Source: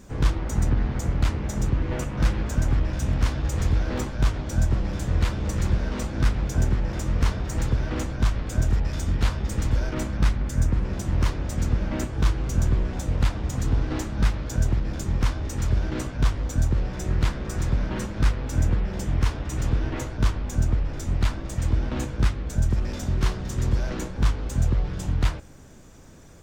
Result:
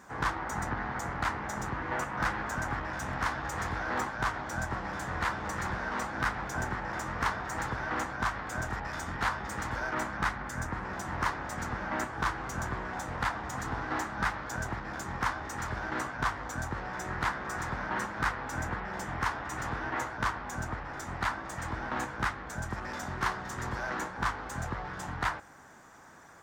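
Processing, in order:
high-pass filter 290 Hz 6 dB per octave
flat-topped bell 1,200 Hz +12 dB
wave folding −12.5 dBFS
level −5.5 dB

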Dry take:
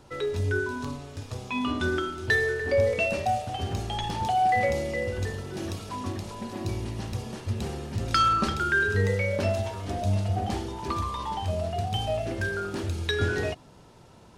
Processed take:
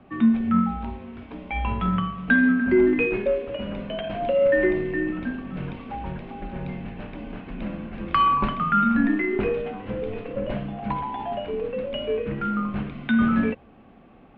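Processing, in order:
hollow resonant body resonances 220/420 Hz, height 9 dB, ringing for 45 ms
harmonic generator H 7 −34 dB, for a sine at −8 dBFS
single-sideband voice off tune −190 Hz 290–3,000 Hz
level +3.5 dB

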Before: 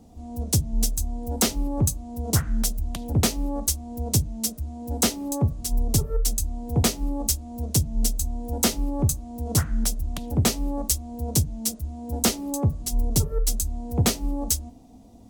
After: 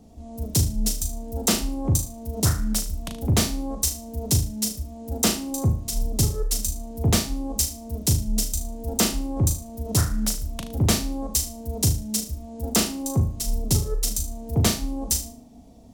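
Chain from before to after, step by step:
flutter between parallel walls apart 6.2 metres, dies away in 0.35 s
wrong playback speed 25 fps video run at 24 fps

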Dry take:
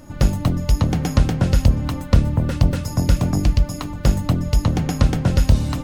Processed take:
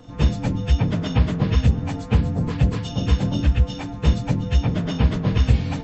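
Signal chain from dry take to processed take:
partials spread apart or drawn together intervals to 81%

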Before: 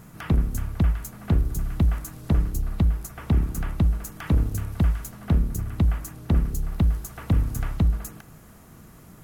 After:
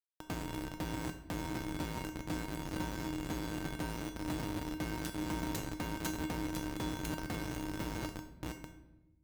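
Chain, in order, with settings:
feedback delay that plays each chunk backwards 317 ms, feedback 66%, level −8.5 dB
0:05.04–0:07.38: parametric band 14,000 Hz +7.5 dB 2 octaves
comparator with hysteresis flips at −25.5 dBFS
high-pass filter 130 Hz 6 dB per octave
tuned comb filter 310 Hz, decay 0.4 s, harmonics odd, mix 90%
rectangular room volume 450 cubic metres, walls mixed, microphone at 0.46 metres
level +6 dB

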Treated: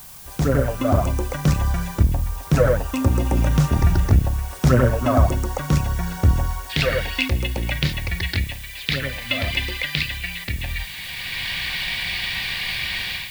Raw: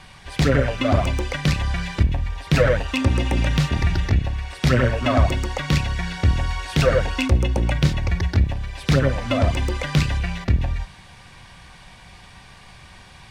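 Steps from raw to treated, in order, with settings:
flat-topped bell 2,900 Hz −10 dB, from 0:06.69 +9 dB, from 0:08.20 +16 dB
automatic gain control gain up to 12 dB
background noise blue −38 dBFS
level −3.5 dB

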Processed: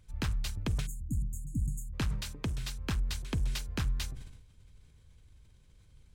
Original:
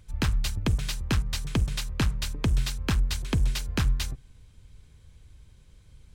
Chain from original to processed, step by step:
0:00.86–0:01.93: time-frequency box erased 320–6,500 Hz
0:02.13–0:02.63: high-pass filter 77 Hz 6 dB per octave
level that may fall only so fast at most 56 dB per second
level −7.5 dB

